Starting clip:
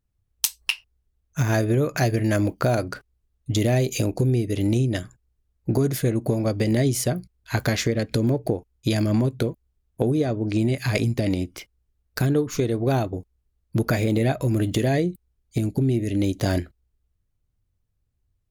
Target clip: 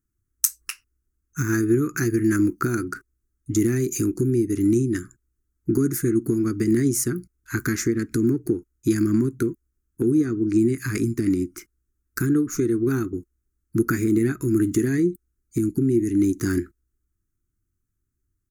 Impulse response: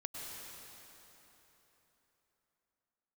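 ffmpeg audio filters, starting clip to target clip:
-af "firequalizer=gain_entry='entry(120,0);entry(350,12);entry(580,-28);entry(1300,9);entry(3200,-14);entry(6300,8)':delay=0.05:min_phase=1,volume=0.596"

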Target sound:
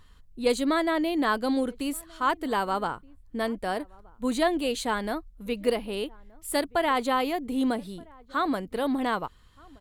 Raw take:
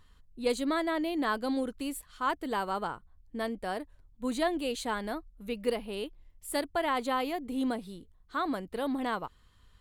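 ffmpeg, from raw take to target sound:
-filter_complex "[0:a]asplit=2[s0][s1];[s1]adelay=1224,volume=0.0562,highshelf=f=4000:g=-27.6[s2];[s0][s2]amix=inputs=2:normalize=0,volume=1.78"

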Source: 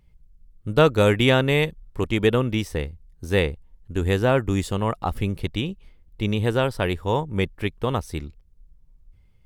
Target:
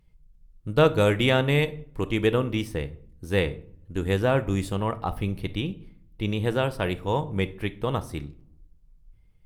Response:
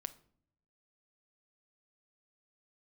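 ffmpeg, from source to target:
-filter_complex "[0:a]asettb=1/sr,asplit=3[s0][s1][s2];[s0]atrim=end=4.754[s3];[s1]atrim=start=4.75:end=6.25,asetpts=PTS-STARTPTS,afade=t=in:d=0.004:c=qsin,afade=t=out:st=1.496:d=0.004:c=qsin,equalizer=f=7300:t=o:w=0.3:g=-6.5[s4];[s2]atrim=start=6.246[s5];[s3][s4]acrossfade=d=0.004:c1=hsin:c2=qsin[s6];[s6][s5]acrossfade=d=0.004:c1=qsin:c2=hsin[s7];[1:a]atrim=start_sample=2205[s8];[s7][s8]afir=irnorm=-1:irlink=0" -ar 48000 -c:a libopus -b:a 48k

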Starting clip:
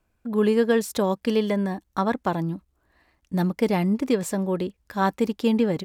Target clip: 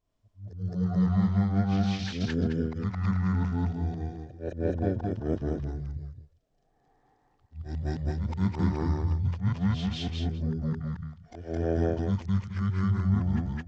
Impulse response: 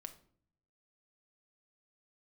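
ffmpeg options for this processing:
-af "afftfilt=real='re':imag='-im':win_size=8192:overlap=0.75,asetrate=18846,aresample=44100"

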